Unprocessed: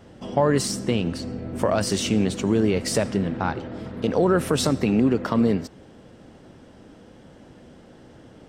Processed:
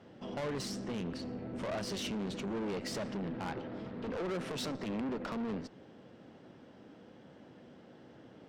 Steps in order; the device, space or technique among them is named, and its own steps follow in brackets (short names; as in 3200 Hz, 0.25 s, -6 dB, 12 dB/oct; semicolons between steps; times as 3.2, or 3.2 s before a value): 4.39–5.01 HPF 120 Hz 12 dB/oct; valve radio (BPF 130–4600 Hz; tube stage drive 28 dB, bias 0.45; core saturation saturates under 150 Hz); gain -5 dB